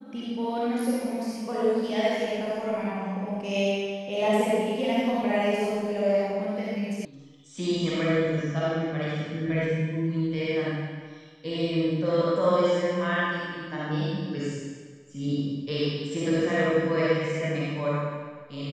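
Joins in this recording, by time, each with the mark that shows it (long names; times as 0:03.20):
0:07.05: cut off before it has died away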